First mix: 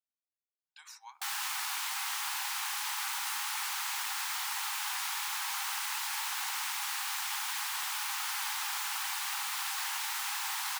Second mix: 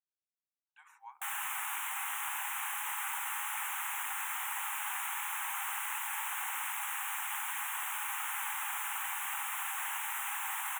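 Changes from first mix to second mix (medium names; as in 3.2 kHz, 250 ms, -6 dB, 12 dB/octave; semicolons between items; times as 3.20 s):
speech: add tilt EQ -4 dB/octave; master: add Butterworth band-stop 4.7 kHz, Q 0.96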